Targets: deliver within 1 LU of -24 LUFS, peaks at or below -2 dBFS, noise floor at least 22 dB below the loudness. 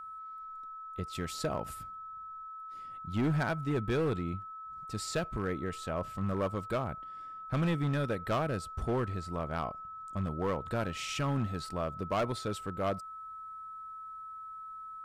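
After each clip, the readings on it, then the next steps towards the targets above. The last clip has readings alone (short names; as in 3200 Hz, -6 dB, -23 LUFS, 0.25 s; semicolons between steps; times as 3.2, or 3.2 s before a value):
clipped 1.5%; flat tops at -25.0 dBFS; steady tone 1300 Hz; tone level -42 dBFS; loudness -35.5 LUFS; peak -25.0 dBFS; loudness target -24.0 LUFS
-> clip repair -25 dBFS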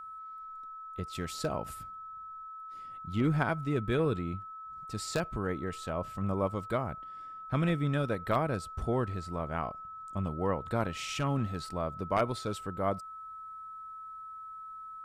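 clipped 0.0%; steady tone 1300 Hz; tone level -42 dBFS
-> notch 1300 Hz, Q 30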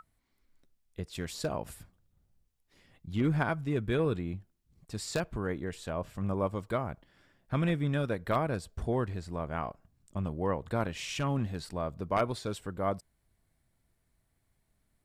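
steady tone none; loudness -33.5 LUFS; peak -15.5 dBFS; loudness target -24.0 LUFS
-> gain +9.5 dB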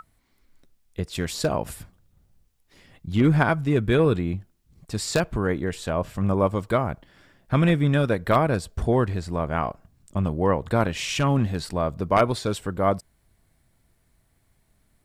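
loudness -24.0 LUFS; peak -6.0 dBFS; noise floor -67 dBFS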